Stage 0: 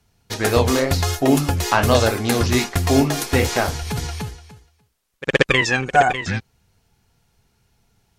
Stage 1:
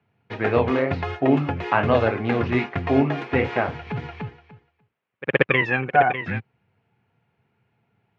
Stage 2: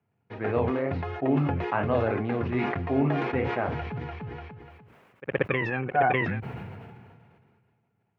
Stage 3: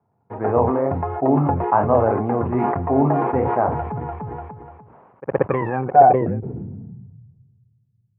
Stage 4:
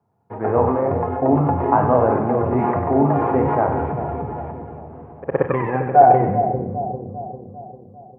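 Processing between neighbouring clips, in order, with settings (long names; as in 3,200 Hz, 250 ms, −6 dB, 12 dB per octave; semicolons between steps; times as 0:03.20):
Chebyshev band-pass filter 110–2,500 Hz, order 3; level −2 dB
high-shelf EQ 2,400 Hz −11 dB; level that may fall only so fast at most 29 dB per second; level −6.5 dB
low-pass filter sweep 930 Hz → 120 Hz, 0:05.89–0:07.22; level +5.5 dB
echo with a time of its own for lows and highs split 750 Hz, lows 398 ms, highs 96 ms, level −8 dB; four-comb reverb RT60 0.52 s, combs from 32 ms, DRR 10 dB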